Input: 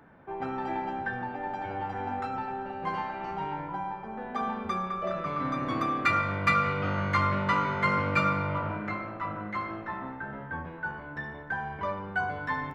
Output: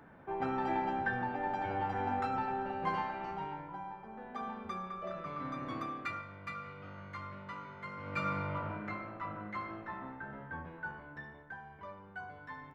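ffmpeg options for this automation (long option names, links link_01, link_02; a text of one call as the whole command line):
ffmpeg -i in.wav -af "volume=11dB,afade=type=out:start_time=2.75:duration=0.89:silence=0.375837,afade=type=out:start_time=5.74:duration=0.54:silence=0.334965,afade=type=in:start_time=7.97:duration=0.4:silence=0.251189,afade=type=out:start_time=10.83:duration=0.79:silence=0.375837" out.wav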